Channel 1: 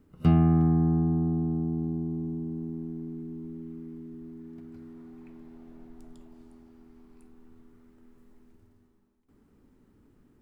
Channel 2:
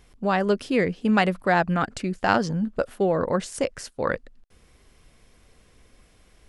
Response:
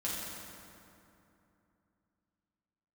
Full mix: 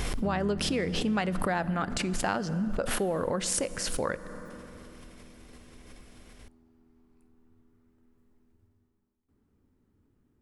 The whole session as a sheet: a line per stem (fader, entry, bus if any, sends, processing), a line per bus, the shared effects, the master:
-9.5 dB, 0.00 s, no send, bell 82 Hz +7.5 dB 0.84 oct
+1.5 dB, 0.00 s, send -19 dB, backwards sustainer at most 40 dB/s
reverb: on, RT60 2.8 s, pre-delay 5 ms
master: compressor 3:1, threshold -29 dBFS, peak gain reduction 12.5 dB

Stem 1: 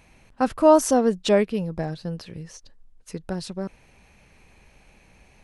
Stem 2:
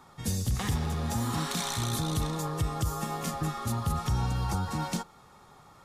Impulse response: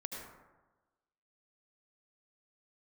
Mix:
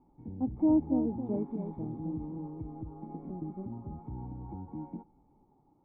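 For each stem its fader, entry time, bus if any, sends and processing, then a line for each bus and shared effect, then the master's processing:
-7.5 dB, 0.00 s, no send, echo send -8 dB, low shelf 360 Hz +8.5 dB
+0.5 dB, 0.00 s, no send, no echo send, dry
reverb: off
echo: echo 0.272 s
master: vocal tract filter u

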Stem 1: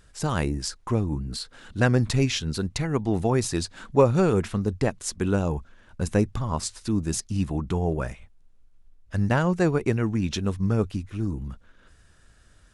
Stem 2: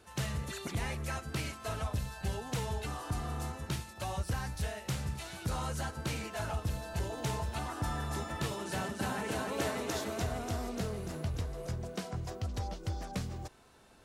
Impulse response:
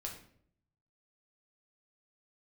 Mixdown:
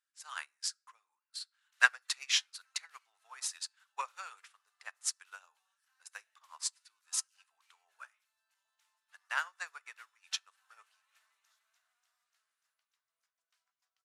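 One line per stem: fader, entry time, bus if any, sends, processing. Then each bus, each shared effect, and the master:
+3.0 dB, 0.00 s, send -5.5 dB, dry
-1.5 dB, 1.55 s, no send, dry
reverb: on, RT60 0.60 s, pre-delay 6 ms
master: inverse Chebyshev high-pass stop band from 260 Hz, stop band 70 dB; upward expander 2.5:1, over -40 dBFS

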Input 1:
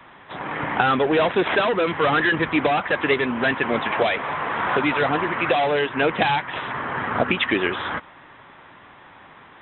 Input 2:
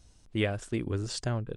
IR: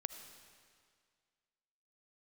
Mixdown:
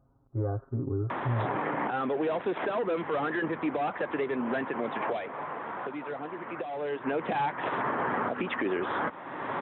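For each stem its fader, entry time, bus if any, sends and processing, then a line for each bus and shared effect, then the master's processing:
5.01 s -6.5 dB -> 5.6 s -14.5 dB -> 6.7 s -14.5 dB -> 7.22 s -3.5 dB, 1.10 s, no send, band-pass 440 Hz, Q 0.56; three-band squash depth 100%
+2.5 dB, 0.00 s, no send, elliptic low-pass 1300 Hz, stop band 50 dB; comb 7.4 ms, depth 91%; harmonic-percussive split percussive -15 dB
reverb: off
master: HPF 73 Hz 12 dB/oct; limiter -21 dBFS, peak gain reduction 9 dB

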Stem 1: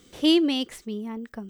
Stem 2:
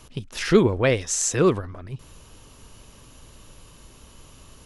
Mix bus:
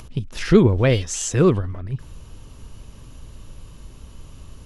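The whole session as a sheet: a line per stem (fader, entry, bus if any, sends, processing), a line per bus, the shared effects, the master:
-8.5 dB, 0.65 s, no send, median filter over 3 samples; inverse Chebyshev high-pass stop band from 520 Hz
-1.0 dB, 0.00 s, no send, low shelf 220 Hz +11.5 dB; upward compressor, threshold -37 dBFS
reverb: off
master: high shelf 8200 Hz -4.5 dB

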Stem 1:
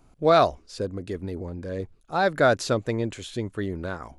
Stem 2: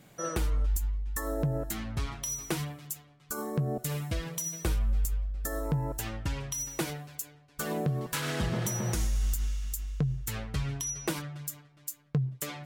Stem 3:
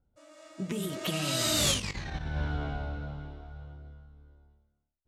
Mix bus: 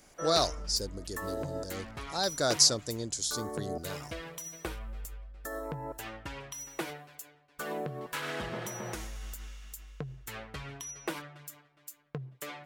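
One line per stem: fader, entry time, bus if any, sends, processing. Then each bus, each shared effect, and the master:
-10.0 dB, 0.00 s, no send, resonant high shelf 3600 Hz +13 dB, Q 3
-1.0 dB, 0.00 s, no send, tone controls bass -13 dB, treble -14 dB
-10.5 dB, 0.00 s, no send, Wiener smoothing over 15 samples; negative-ratio compressor -40 dBFS, ratio -1; auto duck -11 dB, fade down 1.75 s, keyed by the first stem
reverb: off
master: high shelf 4700 Hz +7 dB

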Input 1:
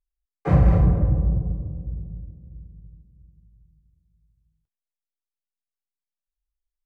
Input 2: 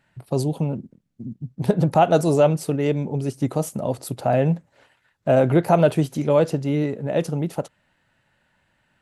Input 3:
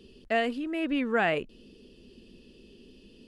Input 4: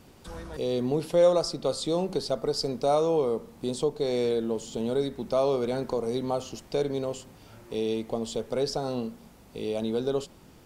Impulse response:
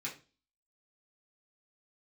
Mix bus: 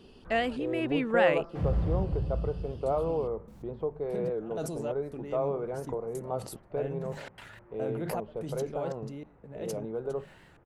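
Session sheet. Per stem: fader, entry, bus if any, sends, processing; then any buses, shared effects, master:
-11.5 dB, 1.10 s, no send, slew limiter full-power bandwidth 27 Hz
-19.5 dB, 2.45 s, no send, notches 50/100/150/200 Hz; step gate "xx..xxxx..xxxxx." 146 bpm -60 dB; sustainer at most 27 dB/s
-1.5 dB, 0.00 s, no send, dry
-5.0 dB, 0.00 s, no send, LPF 1800 Hz 24 dB/oct; bell 250 Hz -12 dB 0.32 oct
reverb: off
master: record warp 78 rpm, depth 100 cents

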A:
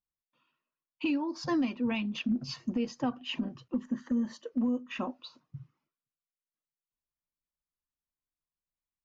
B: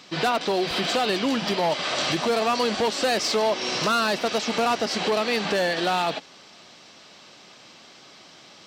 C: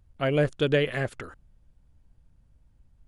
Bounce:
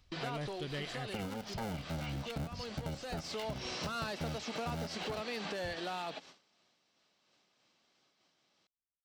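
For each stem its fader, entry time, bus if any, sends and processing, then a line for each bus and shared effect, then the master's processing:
-3.5 dB, 0.10 s, bus A, no send, cycle switcher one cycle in 3, inverted; low shelf 360 Hz +7.5 dB; comb 1.4 ms, depth 81%
-3.0 dB, 0.00 s, bus A, no send, noise-modulated level, depth 50%; auto duck -10 dB, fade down 0.75 s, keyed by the third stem
-11.0 dB, 0.00 s, no bus, no send, high shelf 6200 Hz +9 dB; comb 1 ms, depth 46%; hard clip -18.5 dBFS, distortion -17 dB
bus A: 0.0 dB, gate -49 dBFS, range -20 dB; compressor 2:1, threshold -35 dBFS, peak gain reduction 8 dB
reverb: off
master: compressor 1.5:1, threshold -45 dBFS, peak gain reduction 6.5 dB

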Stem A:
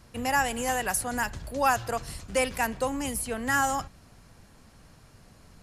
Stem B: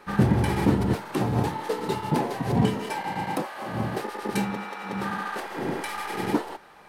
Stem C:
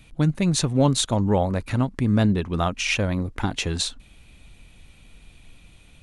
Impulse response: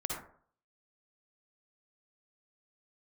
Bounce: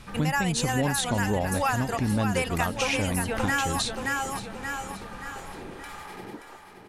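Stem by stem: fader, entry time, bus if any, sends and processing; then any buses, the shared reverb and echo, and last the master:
+2.5 dB, 0.00 s, no send, echo send -6.5 dB, reverb removal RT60 0.53 s; bell 2500 Hz +4.5 dB 2.1 oct
-7.0 dB, 0.00 s, no send, echo send -8.5 dB, compressor 6:1, threshold -31 dBFS, peak gain reduction 15 dB
0.0 dB, 0.00 s, no send, echo send -19.5 dB, dry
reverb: off
echo: feedback echo 0.577 s, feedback 45%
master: compressor 3:1, threshold -24 dBFS, peak gain reduction 9 dB

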